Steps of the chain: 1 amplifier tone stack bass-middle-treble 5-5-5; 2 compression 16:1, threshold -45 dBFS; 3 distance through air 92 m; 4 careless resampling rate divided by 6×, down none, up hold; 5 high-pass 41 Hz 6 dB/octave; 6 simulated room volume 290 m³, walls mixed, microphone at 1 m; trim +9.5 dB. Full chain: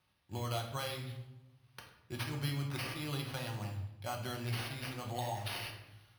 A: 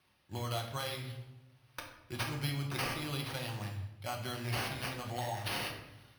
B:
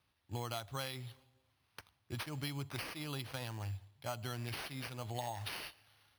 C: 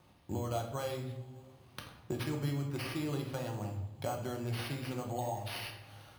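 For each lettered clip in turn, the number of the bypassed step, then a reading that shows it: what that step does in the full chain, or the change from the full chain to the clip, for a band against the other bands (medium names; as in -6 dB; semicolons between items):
3, 125 Hz band -2.5 dB; 6, momentary loudness spread change -5 LU; 1, 500 Hz band +5.0 dB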